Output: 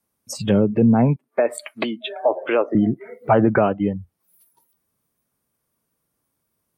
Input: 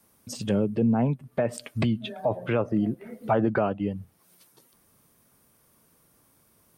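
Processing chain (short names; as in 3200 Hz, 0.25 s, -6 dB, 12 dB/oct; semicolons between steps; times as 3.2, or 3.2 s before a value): spectral noise reduction 20 dB; 1.16–2.75 HPF 300 Hz 24 dB/oct; gain +7.5 dB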